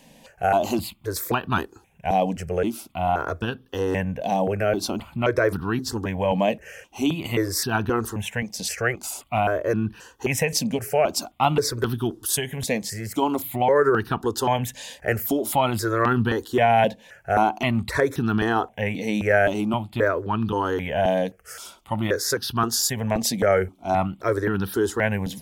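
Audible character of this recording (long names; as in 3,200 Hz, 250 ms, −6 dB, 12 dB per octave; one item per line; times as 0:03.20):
notches that jump at a steady rate 3.8 Hz 370–2,100 Hz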